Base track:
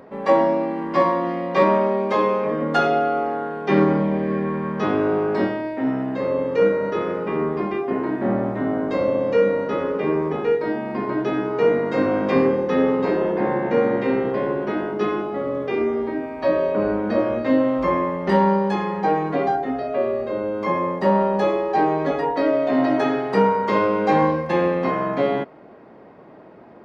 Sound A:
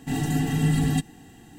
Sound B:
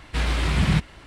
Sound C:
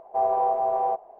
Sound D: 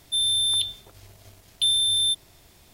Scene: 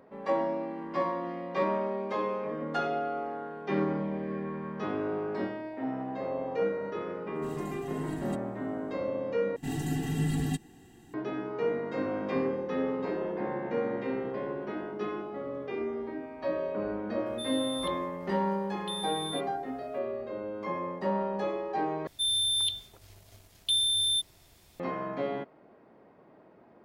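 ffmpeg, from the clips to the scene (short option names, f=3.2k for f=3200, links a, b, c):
-filter_complex "[1:a]asplit=2[a][b];[4:a]asplit=2[c][d];[0:a]volume=-12dB[e];[3:a]acompressor=threshold=-31dB:ratio=6:attack=3.2:release=140:knee=1:detection=peak[f];[b]equalizer=f=370:w=5.4:g=8[g];[e]asplit=3[h][i][j];[h]atrim=end=9.564[k];[g]atrim=end=1.58,asetpts=PTS-STARTPTS,volume=-7.5dB[l];[i]atrim=start=11.136:end=22.074[m];[d]atrim=end=2.73,asetpts=PTS-STARTPTS,volume=-5dB[n];[j]atrim=start=24.796[o];[f]atrim=end=1.19,asetpts=PTS-STARTPTS,volume=-8dB,afade=t=in:d=0.004:c=hsin,afade=t=out:st=1.186:d=0.004:c=hsin,adelay=5680[p];[a]atrim=end=1.58,asetpts=PTS-STARTPTS,volume=-17.5dB,afade=t=in:d=0.004:c=hsin,afade=t=out:st=1.576:d=0.004:c=hsin,adelay=7350[q];[c]atrim=end=2.73,asetpts=PTS-STARTPTS,volume=-16.5dB,afade=t=in:d=0.004:c=hsin,afade=t=out:st=2.726:d=0.004:c=hsin,adelay=17260[r];[k][l]acrossfade=d=0.004:c1=hsin:c2=hsin[s];[s][m]acrossfade=d=0.004:c1=hsin:c2=hsin[t];[t][n]acrossfade=d=0.004:c1=hsin:c2=hsin[u];[u][o]acrossfade=d=0.004:c1=hsin:c2=hsin[v];[v][p][q][r]amix=inputs=4:normalize=0"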